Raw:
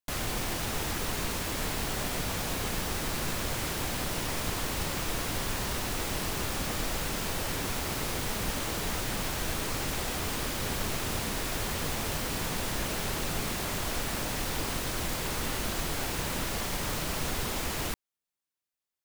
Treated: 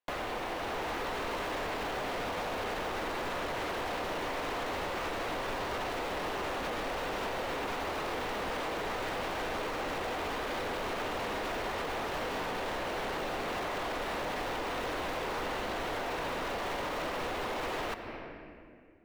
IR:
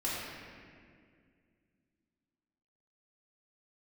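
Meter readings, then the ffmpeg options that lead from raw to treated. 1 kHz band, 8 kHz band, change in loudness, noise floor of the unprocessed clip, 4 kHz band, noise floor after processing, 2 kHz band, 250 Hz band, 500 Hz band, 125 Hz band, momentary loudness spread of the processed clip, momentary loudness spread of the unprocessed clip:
+2.5 dB, -15.0 dB, -3.5 dB, under -85 dBFS, -6.0 dB, -43 dBFS, -0.5 dB, -4.0 dB, +2.5 dB, -11.0 dB, 0 LU, 0 LU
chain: -filter_complex "[0:a]tiltshelf=f=970:g=6,dynaudnorm=f=220:g=9:m=3.76,acrossover=split=400 3900:gain=0.0891 1 0.158[s0][s1][s2];[s0][s1][s2]amix=inputs=3:normalize=0,alimiter=limit=0.0841:level=0:latency=1,bandreject=f=4900:w=28,asoftclip=type=tanh:threshold=0.0316,asplit=2[s3][s4];[1:a]atrim=start_sample=2205[s5];[s4][s5]afir=irnorm=-1:irlink=0,volume=0.2[s6];[s3][s6]amix=inputs=2:normalize=0,acompressor=threshold=0.01:ratio=6,volume=2.11"

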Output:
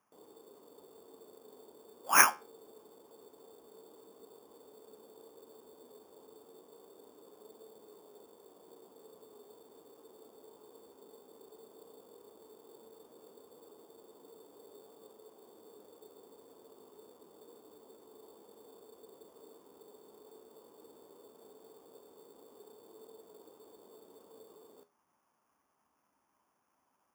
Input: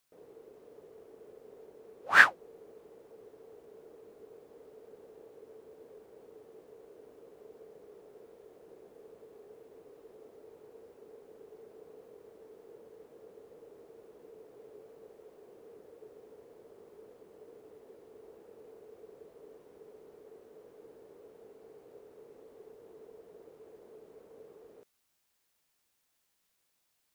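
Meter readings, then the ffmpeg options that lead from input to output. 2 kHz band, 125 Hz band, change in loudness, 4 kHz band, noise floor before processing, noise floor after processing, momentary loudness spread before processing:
-7.5 dB, -3.5 dB, -3.0 dB, -0.5 dB, -77 dBFS, -78 dBFS, 3 LU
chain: -af "acrusher=samples=11:mix=1:aa=0.000001,highpass=77,highshelf=f=6400:g=9,flanger=delay=8.9:depth=6.9:regen=74:speed=0.13:shape=triangular,equalizer=f=125:t=o:w=1:g=-6,equalizer=f=250:t=o:w=1:g=7,equalizer=f=500:t=o:w=1:g=-3,equalizer=f=1000:t=o:w=1:g=11,equalizer=f=2000:t=o:w=1:g=-7,equalizer=f=4000:t=o:w=1:g=-3"

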